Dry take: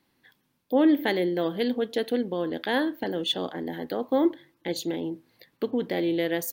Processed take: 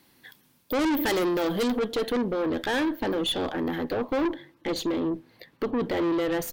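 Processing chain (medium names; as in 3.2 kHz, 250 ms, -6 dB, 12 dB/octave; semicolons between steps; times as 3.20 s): valve stage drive 31 dB, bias 0.3; treble shelf 4.9 kHz +7.5 dB, from 1.79 s -4 dB, from 3.81 s -9 dB; trim +8.5 dB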